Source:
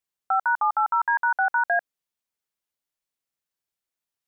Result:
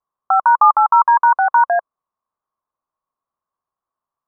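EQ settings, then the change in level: synth low-pass 1100 Hz, resonance Q 10; air absorption 490 m; bell 620 Hz +3.5 dB 0.45 oct; +4.0 dB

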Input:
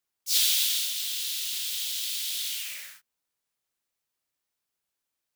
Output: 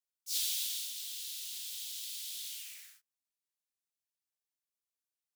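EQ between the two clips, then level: pre-emphasis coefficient 0.8; high shelf 10000 Hz -11.5 dB; -5.0 dB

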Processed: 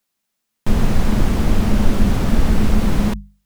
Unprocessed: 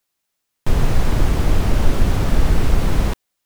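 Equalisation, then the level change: bell 210 Hz +14 dB 0.27 oct; notches 50/100/150/200 Hz; 0.0 dB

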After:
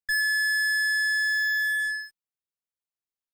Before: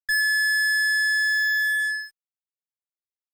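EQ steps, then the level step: low shelf 320 Hz +4 dB; -3.0 dB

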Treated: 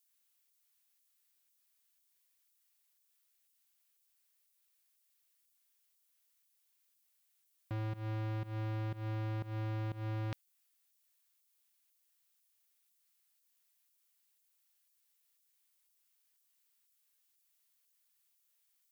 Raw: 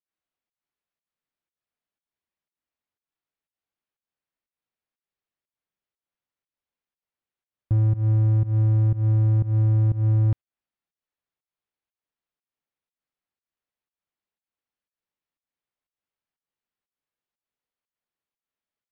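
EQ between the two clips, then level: differentiator; +17.0 dB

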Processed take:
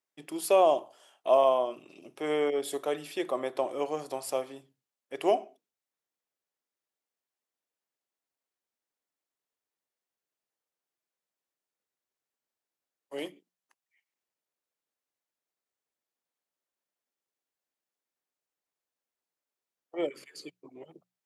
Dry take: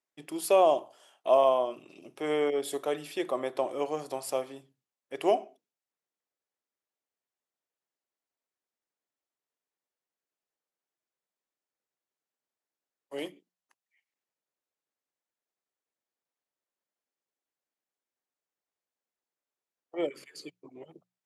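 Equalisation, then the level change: low shelf 64 Hz -9 dB; 0.0 dB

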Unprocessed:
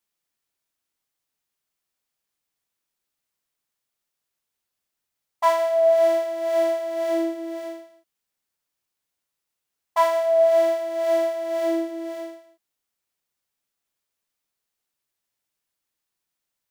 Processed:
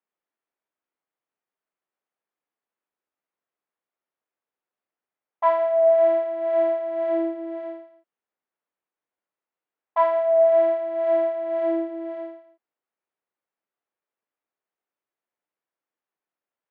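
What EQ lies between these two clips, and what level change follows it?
BPF 360–2400 Hz; air absorption 150 m; tilt -2 dB/oct; 0.0 dB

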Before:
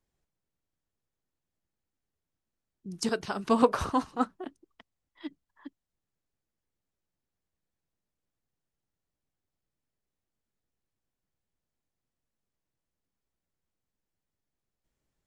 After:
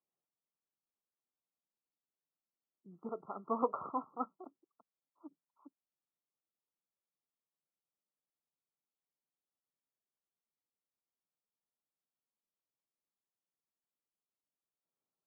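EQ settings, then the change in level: HPF 140 Hz 24 dB/oct; brick-wall FIR low-pass 1400 Hz; low shelf 370 Hz -10.5 dB; -7.0 dB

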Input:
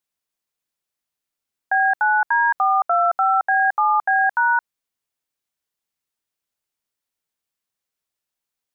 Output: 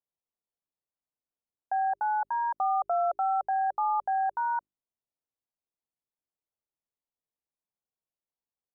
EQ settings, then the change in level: dynamic EQ 570 Hz, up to +4 dB, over -41 dBFS, Q 6; LPF 1000 Hz 24 dB/oct; notches 50/100/150/200/250/300/350/400 Hz; -6.5 dB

